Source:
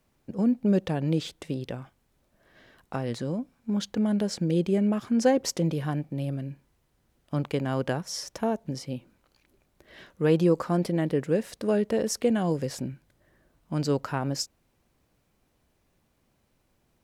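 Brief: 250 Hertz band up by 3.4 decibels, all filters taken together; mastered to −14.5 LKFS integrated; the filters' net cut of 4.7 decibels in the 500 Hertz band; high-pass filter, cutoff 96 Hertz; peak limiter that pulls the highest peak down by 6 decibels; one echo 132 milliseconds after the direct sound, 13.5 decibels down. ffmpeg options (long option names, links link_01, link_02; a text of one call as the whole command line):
ffmpeg -i in.wav -af "highpass=96,equalizer=frequency=250:width_type=o:gain=6.5,equalizer=frequency=500:width_type=o:gain=-8,alimiter=limit=-17.5dB:level=0:latency=1,aecho=1:1:132:0.211,volume=13.5dB" out.wav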